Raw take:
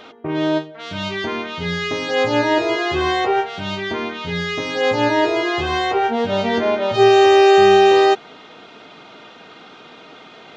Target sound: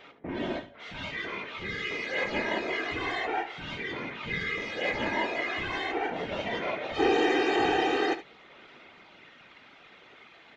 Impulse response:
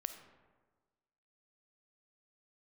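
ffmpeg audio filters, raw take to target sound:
-filter_complex "[0:a]equalizer=frequency=2100:width_type=o:width=0.75:gain=9.5,aphaser=in_gain=1:out_gain=1:delay=2.9:decay=0.22:speed=0.23:type=sinusoidal,afftfilt=real='hypot(re,im)*cos(2*PI*random(0))':imag='hypot(re,im)*sin(2*PI*random(1))':win_size=512:overlap=0.75,asplit=2[link_01][link_02];[link_02]aecho=0:1:72:0.2[link_03];[link_01][link_03]amix=inputs=2:normalize=0,volume=-9dB"

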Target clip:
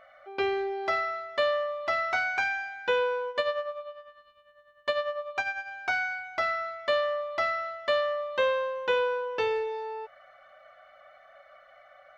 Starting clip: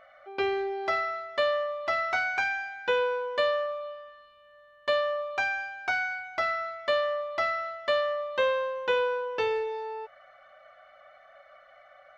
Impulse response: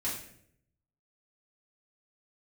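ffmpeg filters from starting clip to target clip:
-filter_complex "[0:a]asettb=1/sr,asplit=3[link_01][link_02][link_03];[link_01]atrim=end=3.294[link_04];[link_02]atrim=start=3.29:end=5.71,asetpts=PTS-STARTPTS,afade=type=in:duration=0.004:curve=qsin,afade=type=out:start_time=2.416:duration=0.004:curve=qsin,tremolo=f=10:d=0.67[link_05];[link_03]atrim=start=5.706[link_06];[link_04][link_05]acrossfade=duration=0.004:curve1=hsin:curve2=qsin[link_07];[link_07][link_06]acrossfade=duration=0.004:curve1=qsin:curve2=hsin"

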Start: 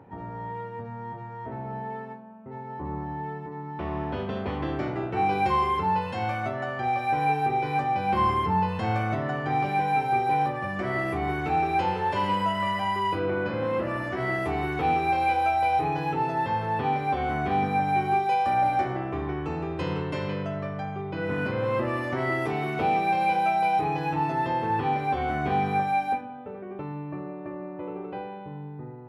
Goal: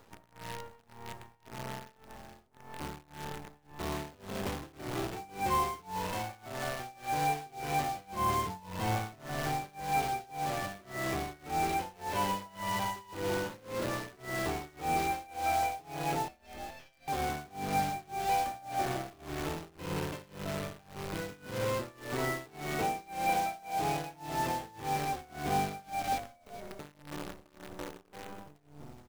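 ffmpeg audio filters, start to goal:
ffmpeg -i in.wav -filter_complex "[0:a]asettb=1/sr,asplit=3[link_01][link_02][link_03];[link_01]atrim=end=16.284[link_04];[link_02]atrim=start=16.28:end=17.08,asetpts=PTS-STARTPTS,afade=type=in:duration=0.004:curve=qsin,afade=type=out:start_time=0.796:duration=0.004:curve=qsin,highpass=frequency=2600:width_type=q:width=1.6[link_05];[link_03]atrim=start=17.076[link_06];[link_04][link_05]acrossfade=duration=0.004:curve1=hsin:curve2=qsin[link_07];[link_07][link_06]acrossfade=duration=0.004:curve1=qsin:curve2=hsin,acrusher=bits=6:dc=4:mix=0:aa=0.000001,asplit=4[link_08][link_09][link_10][link_11];[link_09]adelay=422,afreqshift=-84,volume=-12dB[link_12];[link_10]adelay=844,afreqshift=-168,volume=-21.4dB[link_13];[link_11]adelay=1266,afreqshift=-252,volume=-30.7dB[link_14];[link_08][link_12][link_13][link_14]amix=inputs=4:normalize=0,tremolo=f=1.8:d=0.95,volume=-5dB" out.wav

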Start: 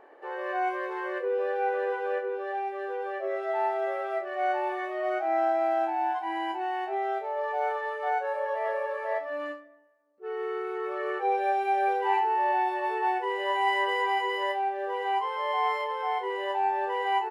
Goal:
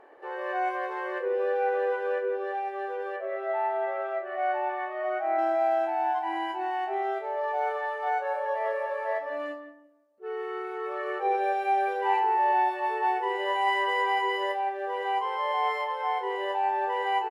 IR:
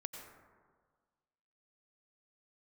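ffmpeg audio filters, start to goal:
-filter_complex "[0:a]asplit=3[link_01][link_02][link_03];[link_01]afade=type=out:start_time=3.16:duration=0.02[link_04];[link_02]highpass=390,lowpass=2700,afade=type=in:start_time=3.16:duration=0.02,afade=type=out:start_time=5.37:duration=0.02[link_05];[link_03]afade=type=in:start_time=5.37:duration=0.02[link_06];[link_04][link_05][link_06]amix=inputs=3:normalize=0,asplit=2[link_07][link_08];[link_08]adelay=174,lowpass=frequency=1000:poles=1,volume=-7.5dB,asplit=2[link_09][link_10];[link_10]adelay=174,lowpass=frequency=1000:poles=1,volume=0.26,asplit=2[link_11][link_12];[link_12]adelay=174,lowpass=frequency=1000:poles=1,volume=0.26[link_13];[link_07][link_09][link_11][link_13]amix=inputs=4:normalize=0" -ar 32000 -c:a aac -b:a 96k

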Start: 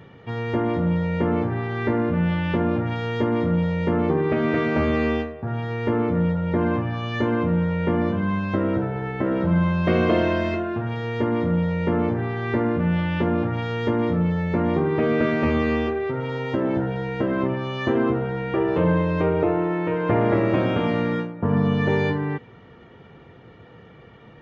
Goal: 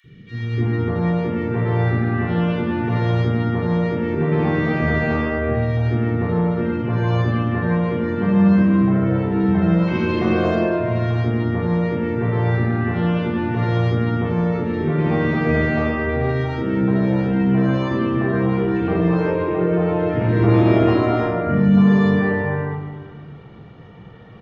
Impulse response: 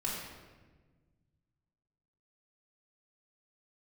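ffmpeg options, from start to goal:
-filter_complex "[0:a]asettb=1/sr,asplit=3[link_01][link_02][link_03];[link_01]atrim=end=20.364[link_04];[link_02]atrim=start=20.36:end=21.18,asetpts=PTS-STARTPTS,afade=type=in:duration=0.004:curve=qsin,afade=type=out:start_time=0.816:duration=0.004:curve=qsin,aecho=1:1:2.9:0.86,atrim=end_sample=36162[link_05];[link_03]atrim=start=21.176[link_06];[link_04][link_05]acrossfade=duration=0.004:curve1=hsin:curve2=qsin[link_07];[link_07][link_06]acrossfade=duration=0.004:curve1=qsin:curve2=hsin,acrossover=split=380|1900[link_08][link_09][link_10];[link_08]adelay=40[link_11];[link_09]adelay=340[link_12];[link_11][link_12][link_10]amix=inputs=3:normalize=0[link_13];[1:a]atrim=start_sample=2205[link_14];[link_13][link_14]afir=irnorm=-1:irlink=0"

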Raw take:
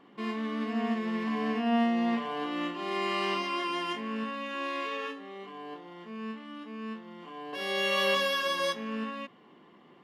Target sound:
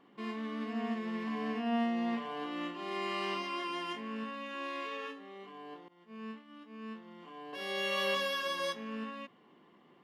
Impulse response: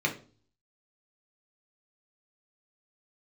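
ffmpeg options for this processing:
-filter_complex "[0:a]asettb=1/sr,asplit=3[link_01][link_02][link_03];[link_01]atrim=end=5.884[link_04];[link_02]atrim=start=5.88:end=6.89,asetpts=PTS-STARTPTS,afade=type=in:duration=0.004:curve=qsin,afade=type=out:start_time=1.006:duration=0.004:curve=qsin,agate=range=-33dB:threshold=-38dB:ratio=3:detection=peak[link_05];[link_03]atrim=start=6.886[link_06];[link_04][link_05]acrossfade=duration=0.004:curve1=hsin:curve2=qsin[link_07];[link_07][link_06]acrossfade=duration=0.004:curve1=qsin:curve2=hsin,volume=-5.5dB"

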